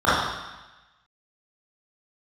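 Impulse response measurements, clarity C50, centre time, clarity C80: -2.0 dB, 90 ms, 2.0 dB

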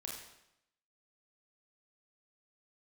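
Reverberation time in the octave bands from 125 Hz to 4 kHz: 0.85, 0.85, 0.80, 0.85, 0.80, 0.75 s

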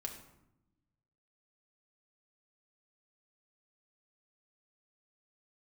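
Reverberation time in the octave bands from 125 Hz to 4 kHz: 1.7, 1.5, 0.90, 0.80, 0.65, 0.50 s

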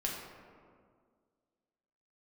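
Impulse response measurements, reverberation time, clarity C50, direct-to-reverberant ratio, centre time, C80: 1.9 s, 2.0 dB, -2.5 dB, 76 ms, 3.5 dB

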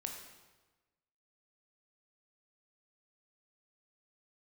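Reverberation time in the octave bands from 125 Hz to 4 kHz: 1.4, 1.2, 1.2, 1.2, 1.1, 1.0 s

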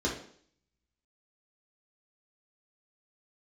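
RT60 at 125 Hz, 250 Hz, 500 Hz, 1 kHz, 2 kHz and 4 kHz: 0.60, 0.60, 0.60, 0.55, 0.55, 0.60 s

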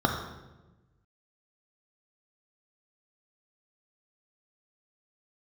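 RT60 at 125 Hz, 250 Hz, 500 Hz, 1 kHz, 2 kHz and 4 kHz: 1.7, 1.5, 1.2, 0.95, 0.90, 0.80 s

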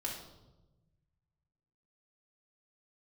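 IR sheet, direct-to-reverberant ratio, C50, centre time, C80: -3.5 dB, 4.0 dB, 40 ms, 7.5 dB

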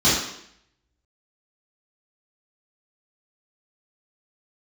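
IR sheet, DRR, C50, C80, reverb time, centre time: -11.5 dB, 1.0 dB, 5.0 dB, 0.70 s, 59 ms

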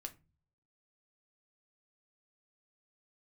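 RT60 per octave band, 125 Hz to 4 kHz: 0.80, 0.55, 0.35, 0.25, 0.25, 0.20 s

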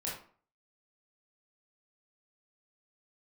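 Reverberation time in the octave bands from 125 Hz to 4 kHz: 0.45, 0.50, 0.45, 0.45, 0.40, 0.30 s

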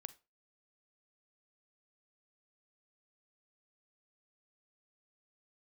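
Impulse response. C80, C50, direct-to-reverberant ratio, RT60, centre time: 25.0 dB, 17.5 dB, 14.5 dB, 0.30 s, 3 ms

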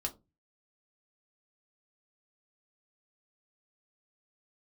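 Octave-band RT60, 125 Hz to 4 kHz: 0.55, 0.35, 0.25, 0.20, 0.15, 0.15 s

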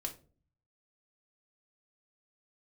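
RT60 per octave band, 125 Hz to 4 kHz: 0.95, 0.65, 0.50, 0.30, 0.25, 0.25 s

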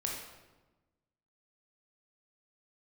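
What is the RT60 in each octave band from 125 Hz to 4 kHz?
1.6, 1.5, 1.2, 1.1, 0.90, 0.80 s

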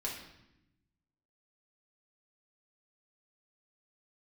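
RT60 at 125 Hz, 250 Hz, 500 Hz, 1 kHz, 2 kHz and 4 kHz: 1.5, 1.4, 0.90, 0.80, 0.85, 0.75 s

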